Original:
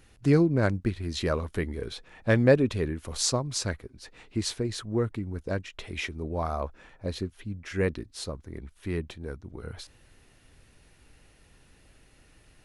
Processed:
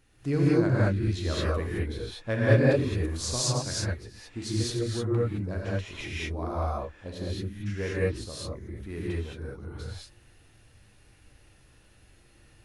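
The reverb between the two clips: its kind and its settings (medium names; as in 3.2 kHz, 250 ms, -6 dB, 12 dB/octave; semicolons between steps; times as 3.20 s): gated-style reverb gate 240 ms rising, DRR -7 dB; trim -8 dB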